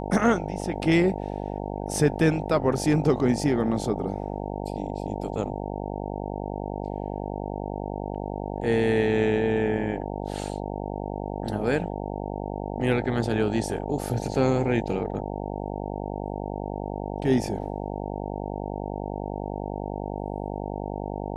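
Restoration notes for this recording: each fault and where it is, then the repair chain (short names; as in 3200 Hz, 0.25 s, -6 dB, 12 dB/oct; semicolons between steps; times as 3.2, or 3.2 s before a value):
buzz 50 Hz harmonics 18 -32 dBFS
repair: de-hum 50 Hz, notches 18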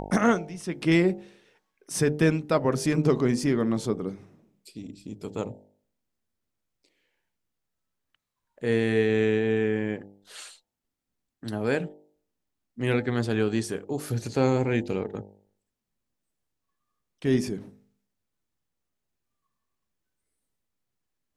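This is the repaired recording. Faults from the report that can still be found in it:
none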